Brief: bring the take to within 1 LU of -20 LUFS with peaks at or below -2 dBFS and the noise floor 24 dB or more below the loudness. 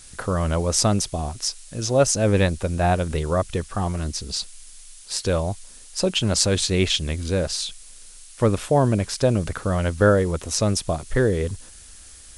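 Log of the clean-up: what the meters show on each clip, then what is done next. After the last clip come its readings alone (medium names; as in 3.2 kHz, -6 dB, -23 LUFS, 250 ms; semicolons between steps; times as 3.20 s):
noise floor -45 dBFS; noise floor target -47 dBFS; loudness -22.5 LUFS; peak level -1.5 dBFS; loudness target -20.0 LUFS
-> noise print and reduce 6 dB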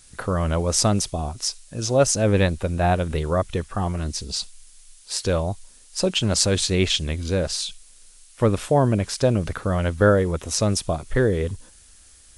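noise floor -50 dBFS; loudness -22.5 LUFS; peak level -1.5 dBFS; loudness target -20.0 LUFS
-> trim +2.5 dB; peak limiter -2 dBFS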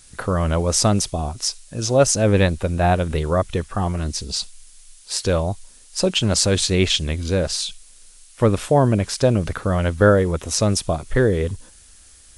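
loudness -20.0 LUFS; peak level -2.0 dBFS; noise floor -48 dBFS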